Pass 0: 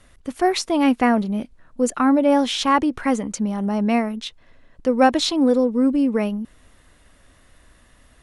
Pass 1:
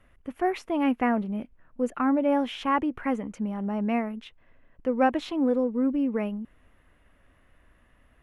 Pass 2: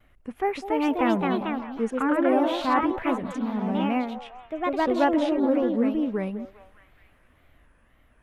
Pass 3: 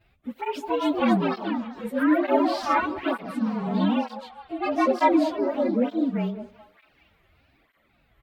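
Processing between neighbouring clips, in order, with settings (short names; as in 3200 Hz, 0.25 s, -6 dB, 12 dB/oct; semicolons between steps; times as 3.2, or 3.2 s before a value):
band shelf 6100 Hz -15.5 dB; gain -7 dB
wow and flutter 150 cents; delay with a stepping band-pass 0.202 s, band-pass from 570 Hz, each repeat 0.7 oct, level -9.5 dB; echoes that change speed 0.327 s, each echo +2 st, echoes 2
inharmonic rescaling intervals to 109%; speakerphone echo 90 ms, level -23 dB; tape flanging out of phase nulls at 1.1 Hz, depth 4.3 ms; gain +5.5 dB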